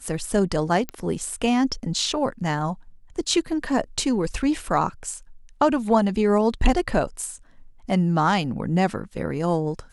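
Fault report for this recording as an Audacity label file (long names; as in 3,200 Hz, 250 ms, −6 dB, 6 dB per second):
0.890000	0.890000	click −14 dBFS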